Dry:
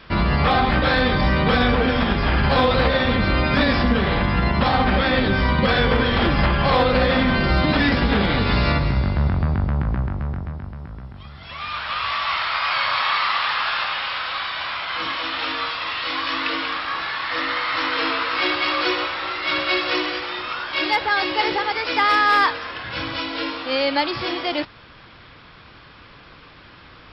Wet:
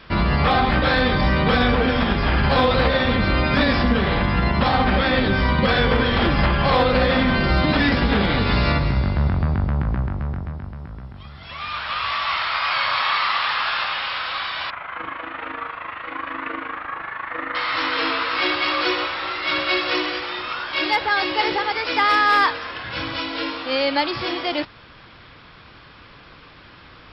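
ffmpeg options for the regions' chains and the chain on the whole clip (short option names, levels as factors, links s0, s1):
-filter_complex "[0:a]asettb=1/sr,asplit=3[s0][s1][s2];[s0]atrim=end=14.704[s3];[s1]atrim=start=14.7:end=17.55,asetpts=PTS-STARTPTS,afade=t=in:d=0.004:c=qsin,afade=t=out:st=2.846:d=0.004:c=qsin,lowpass=f=2100:w=0.5412,lowpass=f=2100:w=1.3066,tremolo=f=26:d=0.667[s4];[s2]atrim=start=17.546[s5];[s3][s4]acrossfade=d=0.004:c1=hsin:c2=qsin[s6];[s6][s5]acrossfade=d=0.004:c1=qsin:c2=hsin"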